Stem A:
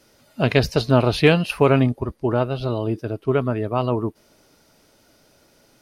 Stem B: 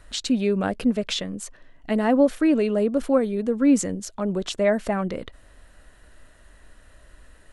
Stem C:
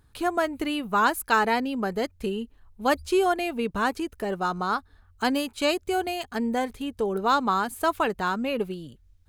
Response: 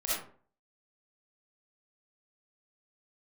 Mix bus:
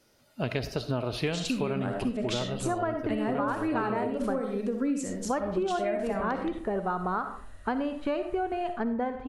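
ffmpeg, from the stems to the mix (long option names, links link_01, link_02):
-filter_complex "[0:a]volume=-9dB,asplit=2[link_01][link_02];[link_02]volume=-17dB[link_03];[1:a]adelay=1200,volume=-6.5dB,asplit=2[link_04][link_05];[link_05]volume=-6dB[link_06];[2:a]lowpass=1500,adelay=2450,volume=0.5dB,asplit=3[link_07][link_08][link_09];[link_07]atrim=end=4.4,asetpts=PTS-STARTPTS,afade=type=out:start_time=4.396:duration=0.004:curve=hsin[link_10];[link_08]atrim=start=4.4:end=5.07,asetpts=PTS-STARTPTS,volume=0[link_11];[link_09]atrim=start=5.07,asetpts=PTS-STARTPTS,afade=type=in:duration=0.004:curve=hsin[link_12];[link_10][link_11][link_12]concat=n=3:v=0:a=1,asplit=2[link_13][link_14];[link_14]volume=-13.5dB[link_15];[3:a]atrim=start_sample=2205[link_16];[link_03][link_06][link_15]amix=inputs=3:normalize=0[link_17];[link_17][link_16]afir=irnorm=-1:irlink=0[link_18];[link_01][link_04][link_13][link_18]amix=inputs=4:normalize=0,acompressor=threshold=-26dB:ratio=6"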